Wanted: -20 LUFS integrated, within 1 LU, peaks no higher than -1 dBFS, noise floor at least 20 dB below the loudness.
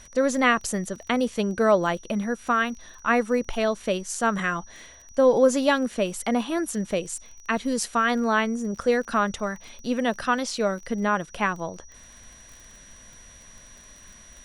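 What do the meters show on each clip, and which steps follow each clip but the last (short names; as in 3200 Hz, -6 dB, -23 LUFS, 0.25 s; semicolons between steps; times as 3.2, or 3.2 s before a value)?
ticks 22/s; steady tone 5800 Hz; tone level -49 dBFS; loudness -24.5 LUFS; peak -7.0 dBFS; loudness target -20.0 LUFS
-> de-click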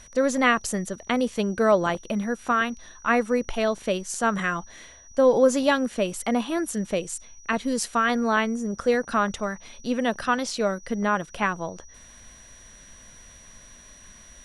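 ticks 0/s; steady tone 5800 Hz; tone level -49 dBFS
-> notch 5800 Hz, Q 30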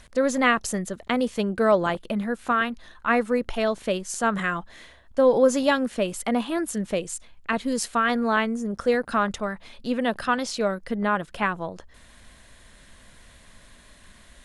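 steady tone none; loudness -25.0 LUFS; peak -7.0 dBFS; loudness target -20.0 LUFS
-> gain +5 dB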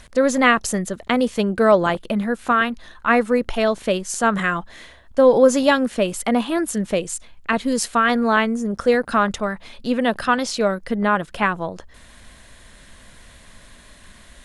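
loudness -20.0 LUFS; peak -2.0 dBFS; noise floor -47 dBFS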